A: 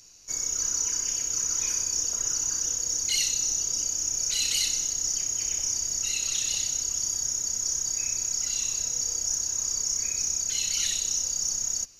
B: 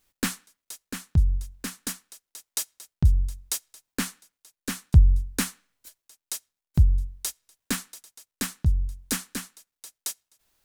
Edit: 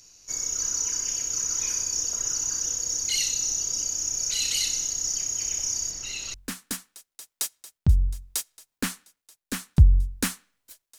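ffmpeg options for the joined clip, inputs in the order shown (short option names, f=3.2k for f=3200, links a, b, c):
-filter_complex "[0:a]asettb=1/sr,asplit=3[a][b][c];[a]atrim=end=5.914[d];[b]atrim=start=5.91:end=6.34,asetpts=PTS-STARTPTS,afade=t=in:d=0.004:c=qsin,afade=t=out:st=0.426:d=0.004:c=qsin,acrossover=split=4600[e][f];[f]acompressor=threshold=-38dB:ratio=4:attack=1:release=60[g];[e][g]amix=inputs=2:normalize=0[h];[c]atrim=start=6.336[i];[d][h]acrossfade=d=0.004:c1=hsin:c2=qsin[j];[j][i]acrossfade=d=0.004:c1=qsin:c2=hsin,apad=whole_dur=10.98,atrim=end=10.98,atrim=end=6.342[k];[1:a]atrim=start=1.498:end=6.14[l];[k][l]acrossfade=d=0.004:c1=hsin:c2=hsin"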